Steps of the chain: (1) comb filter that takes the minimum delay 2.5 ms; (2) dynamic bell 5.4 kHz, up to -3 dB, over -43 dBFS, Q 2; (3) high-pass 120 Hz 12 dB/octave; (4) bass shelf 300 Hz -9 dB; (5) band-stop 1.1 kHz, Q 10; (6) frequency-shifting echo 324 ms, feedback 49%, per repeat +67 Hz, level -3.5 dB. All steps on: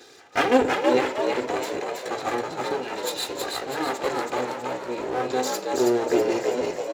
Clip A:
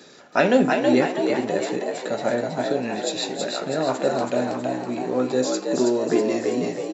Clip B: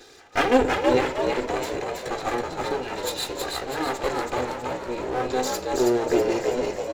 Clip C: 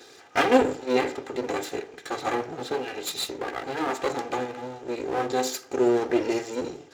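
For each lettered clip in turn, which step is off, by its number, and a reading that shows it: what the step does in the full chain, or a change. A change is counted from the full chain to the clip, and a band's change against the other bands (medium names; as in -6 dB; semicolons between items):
1, 125 Hz band +7.5 dB; 3, 125 Hz band +5.0 dB; 6, echo-to-direct -2.5 dB to none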